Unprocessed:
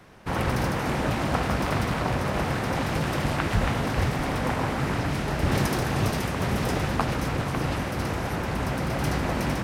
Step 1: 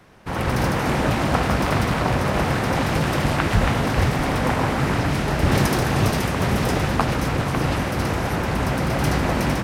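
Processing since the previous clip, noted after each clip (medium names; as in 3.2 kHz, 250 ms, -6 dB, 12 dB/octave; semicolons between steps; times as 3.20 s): level rider gain up to 5.5 dB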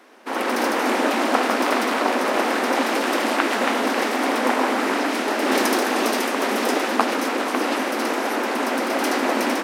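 brick-wall FIR high-pass 220 Hz; trim +2.5 dB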